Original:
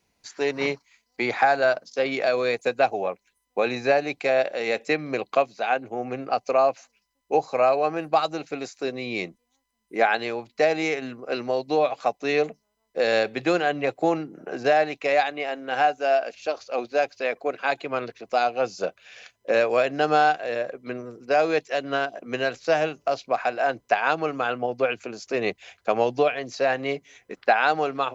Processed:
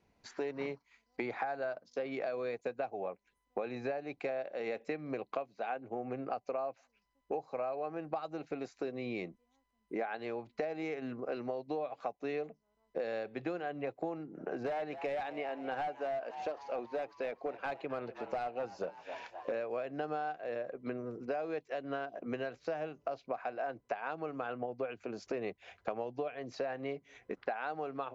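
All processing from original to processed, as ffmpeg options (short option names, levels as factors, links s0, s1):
-filter_complex "[0:a]asettb=1/sr,asplit=3[s0][s1][s2];[s0]atrim=end=14.484[s3];[s1]atrim=start=14.48:end=19.52,asetpts=PTS-STARTPTS,afade=t=in:d=0.004:c=qsin,afade=t=out:st=5.036:d=0.004:c=qsin,asoftclip=type=hard:threshold=0.112,asplit=6[s4][s5][s6][s7][s8][s9];[s5]adelay=260,afreqshift=79,volume=0.126[s10];[s6]adelay=520,afreqshift=158,volume=0.0741[s11];[s7]adelay=780,afreqshift=237,volume=0.0437[s12];[s8]adelay=1040,afreqshift=316,volume=0.026[s13];[s9]adelay=1300,afreqshift=395,volume=0.0153[s14];[s4][s10][s11][s12][s13][s14]amix=inputs=6:normalize=0,atrim=end_sample=222264[s15];[s2]atrim=start=19.516[s16];[s3][s15]acrossfade=d=0.004:c1=hsin:c2=qsin[s17];[s17][s16]acrossfade=d=0.004:c1=qsin:c2=hsin,lowpass=f=1200:p=1,acompressor=threshold=0.0141:ratio=6,volume=1.19"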